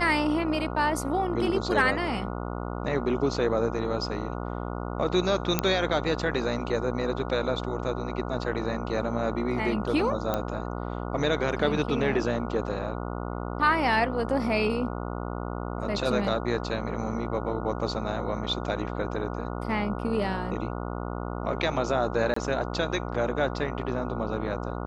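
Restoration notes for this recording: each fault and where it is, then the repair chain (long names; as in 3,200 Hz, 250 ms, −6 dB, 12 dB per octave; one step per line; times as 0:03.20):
mains buzz 60 Hz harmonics 24 −33 dBFS
0:05.59: click −7 dBFS
0:10.34: click −13 dBFS
0:22.34–0:22.36: drop-out 24 ms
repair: click removal
hum removal 60 Hz, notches 24
repair the gap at 0:22.34, 24 ms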